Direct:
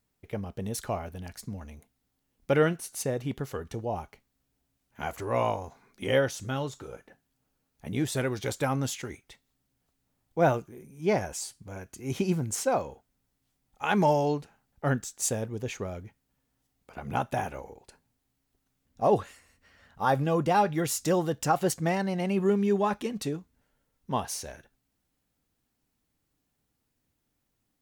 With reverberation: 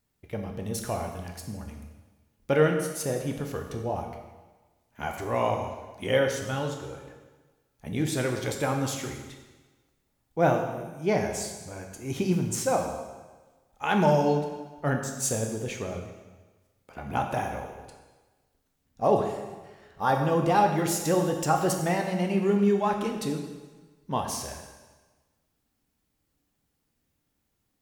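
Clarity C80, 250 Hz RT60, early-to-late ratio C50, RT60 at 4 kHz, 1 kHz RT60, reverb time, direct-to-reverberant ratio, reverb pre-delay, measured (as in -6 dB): 7.0 dB, 1.3 s, 5.5 dB, 1.2 s, 1.3 s, 1.3 s, 3.5 dB, 7 ms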